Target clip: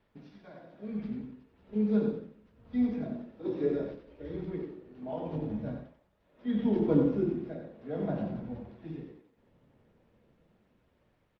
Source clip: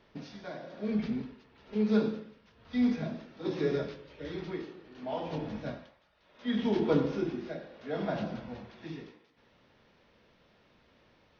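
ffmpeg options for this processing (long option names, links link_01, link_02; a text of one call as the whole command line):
ffmpeg -i in.wav -filter_complex "[0:a]bass=frequency=250:gain=4,treble=frequency=4000:gain=-8,flanger=delay=1.1:depth=8.3:regen=77:speed=0.45:shape=triangular,acrossover=split=710[link_01][link_02];[link_01]dynaudnorm=framelen=610:gausssize=5:maxgain=9dB[link_03];[link_03][link_02]amix=inputs=2:normalize=0,asplit=3[link_04][link_05][link_06];[link_04]afade=type=out:start_time=2.84:duration=0.02[link_07];[link_05]equalizer=frequency=150:width_type=o:width=0.62:gain=-9.5,afade=type=in:start_time=2.84:duration=0.02,afade=type=out:start_time=4.27:duration=0.02[link_08];[link_06]afade=type=in:start_time=4.27:duration=0.02[link_09];[link_07][link_08][link_09]amix=inputs=3:normalize=0,asplit=2[link_10][link_11];[link_11]aecho=0:1:91:0.501[link_12];[link_10][link_12]amix=inputs=2:normalize=0,volume=-5dB" -ar 48000 -c:a libopus -b:a 48k out.opus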